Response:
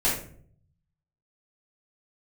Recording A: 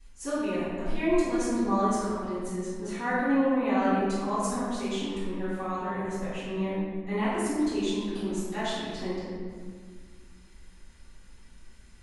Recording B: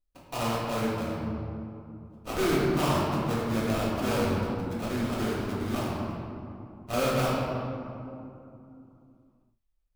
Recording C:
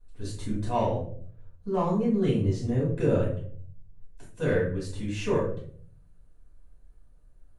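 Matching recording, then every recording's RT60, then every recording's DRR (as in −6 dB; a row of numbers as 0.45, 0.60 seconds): C; 1.8, 2.7, 0.55 seconds; −18.5, −6.5, −8.5 decibels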